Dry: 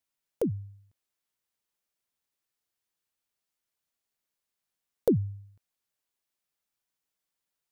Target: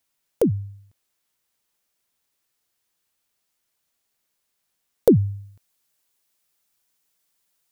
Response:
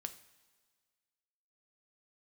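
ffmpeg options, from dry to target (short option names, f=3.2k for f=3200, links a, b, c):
-af "asetnsamples=n=441:p=0,asendcmd='5.16 highshelf g 6.5',highshelf=f=4.5k:g=2,volume=9dB"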